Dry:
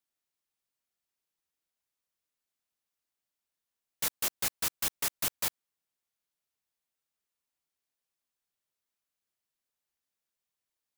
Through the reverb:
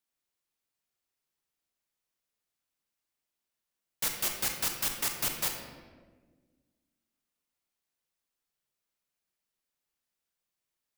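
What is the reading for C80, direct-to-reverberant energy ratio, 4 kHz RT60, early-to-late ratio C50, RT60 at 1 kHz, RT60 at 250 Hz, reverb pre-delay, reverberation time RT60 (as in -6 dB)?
6.0 dB, 3.0 dB, 0.90 s, 4.0 dB, 1.2 s, 2.2 s, 32 ms, 1.4 s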